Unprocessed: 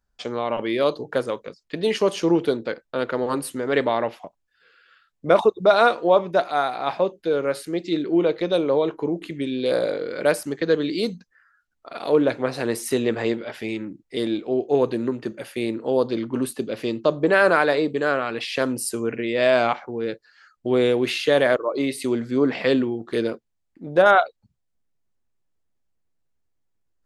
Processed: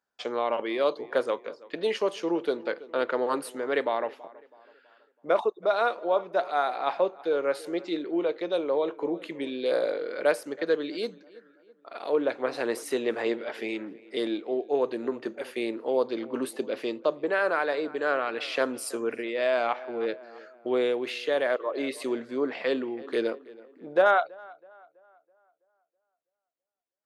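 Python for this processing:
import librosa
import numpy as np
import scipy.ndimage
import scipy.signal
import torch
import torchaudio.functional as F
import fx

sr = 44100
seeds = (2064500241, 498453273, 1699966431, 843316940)

y = fx.echo_tape(x, sr, ms=327, feedback_pct=48, wet_db=-20, lp_hz=2500.0, drive_db=4.0, wow_cents=16)
y = fx.rider(y, sr, range_db=4, speed_s=0.5)
y = scipy.signal.sosfilt(scipy.signal.butter(2, 370.0, 'highpass', fs=sr, output='sos'), y)
y = fx.high_shelf(y, sr, hz=4600.0, db=-8.5)
y = F.gain(torch.from_numpy(y), -4.0).numpy()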